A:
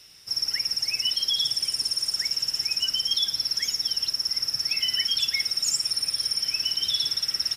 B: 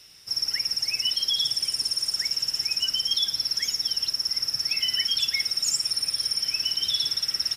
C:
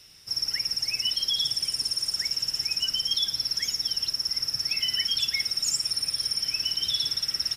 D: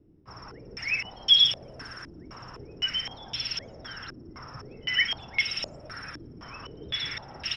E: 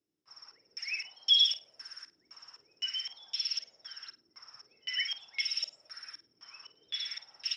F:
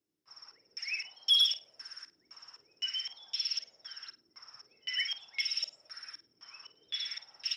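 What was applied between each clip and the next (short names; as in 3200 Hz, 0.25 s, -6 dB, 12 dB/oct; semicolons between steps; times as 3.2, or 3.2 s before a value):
nothing audible
low shelf 210 Hz +5.5 dB; gain -1.5 dB
stepped low-pass 3.9 Hz 320–2900 Hz; gain +3.5 dB
band-pass 6100 Hz, Q 1.2; flutter echo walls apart 8.7 m, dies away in 0.24 s
soft clip -16 dBFS, distortion -21 dB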